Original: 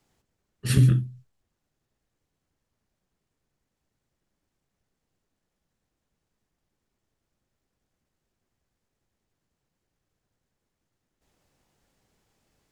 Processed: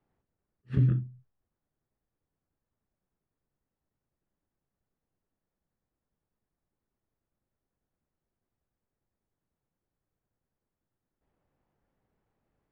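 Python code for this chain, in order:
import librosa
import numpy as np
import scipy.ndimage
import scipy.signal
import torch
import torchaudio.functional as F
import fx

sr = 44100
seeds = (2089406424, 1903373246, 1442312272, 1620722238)

y = scipy.signal.sosfilt(scipy.signal.butter(2, 1600.0, 'lowpass', fs=sr, output='sos'), x)
y = fx.attack_slew(y, sr, db_per_s=410.0)
y = y * librosa.db_to_amplitude(-6.0)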